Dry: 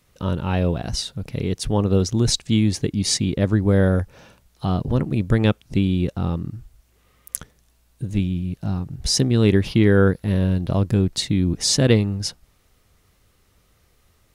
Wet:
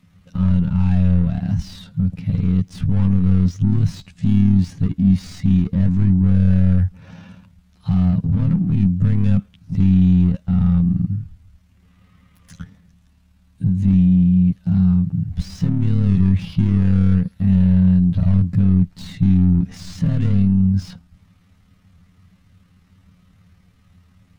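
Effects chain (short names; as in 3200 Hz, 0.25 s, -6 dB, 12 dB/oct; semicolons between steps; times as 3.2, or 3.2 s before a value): overdrive pedal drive 35 dB, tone 1400 Hz, clips at -2.5 dBFS; granular stretch 1.7×, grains 54 ms; EQ curve 200 Hz 0 dB, 380 Hz -27 dB, 2800 Hz -20 dB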